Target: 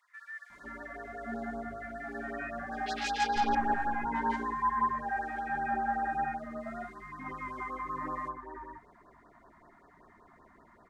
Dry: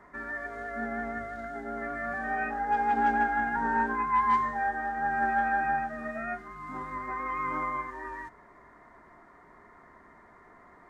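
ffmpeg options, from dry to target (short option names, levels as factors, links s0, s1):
-filter_complex "[0:a]asettb=1/sr,asplit=3[s0][s1][s2];[s0]atrim=end=2.864[s3];[s1]atrim=start=2.86:end=3.55,asetpts=PTS-STARTPTS,afade=t=in:d=0.004:c=qsin,afade=t=out:st=0.686:d=0.004:c=qsin,aeval=exprs='0.15*(cos(1*acos(clip(val(0)/0.15,-1,1)))-cos(1*PI/2))+0.0422*(cos(4*acos(clip(val(0)/0.15,-1,1)))-cos(4*PI/2))+0.0473*(cos(6*acos(clip(val(0)/0.15,-1,1)))-cos(6*PI/2))':c=same[s4];[s2]atrim=start=3.546[s5];[s3][s4]acrossfade=d=0.004:c1=hsin:c2=qsin[s6];[s6][s5]acrossfade=d=0.004:c1=qsin:c2=hsin,acrossover=split=1600[s7][s8];[s7]adelay=500[s9];[s9][s8]amix=inputs=2:normalize=0,afftfilt=real='re*(1-between(b*sr/1024,390*pow(2700/390,0.5+0.5*sin(2*PI*5.2*pts/sr))/1.41,390*pow(2700/390,0.5+0.5*sin(2*PI*5.2*pts/sr))*1.41))':imag='im*(1-between(b*sr/1024,390*pow(2700/390,0.5+0.5*sin(2*PI*5.2*pts/sr))/1.41,390*pow(2700/390,0.5+0.5*sin(2*PI*5.2*pts/sr))*1.41))':win_size=1024:overlap=0.75,volume=0.794"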